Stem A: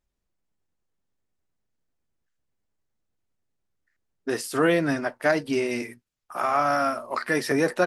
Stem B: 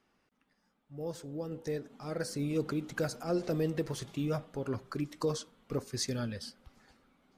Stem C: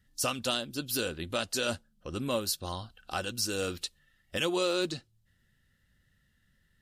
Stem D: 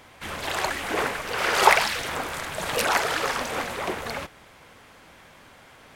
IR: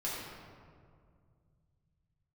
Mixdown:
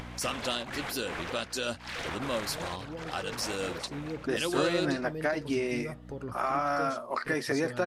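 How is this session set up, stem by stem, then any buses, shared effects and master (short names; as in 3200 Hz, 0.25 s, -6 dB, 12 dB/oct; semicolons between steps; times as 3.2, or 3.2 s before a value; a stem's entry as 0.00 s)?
-3.0 dB, 0.00 s, no send, gate with hold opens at -32 dBFS; compressor, threshold -22 dBFS, peak gain reduction 6.5 dB
-7.0 dB, 1.55 s, no send, dry
-1.5 dB, 0.00 s, no send, hum 60 Hz, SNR 12 dB; low shelf 79 Hz -11.5 dB
-10.0 dB, 0.00 s, no send, high shelf 11000 Hz -11 dB; negative-ratio compressor -31 dBFS, ratio -0.5; auto duck -13 dB, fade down 0.75 s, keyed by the first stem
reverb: off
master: high shelf 9900 Hz -8.5 dB; upward compressor, threshold -32 dBFS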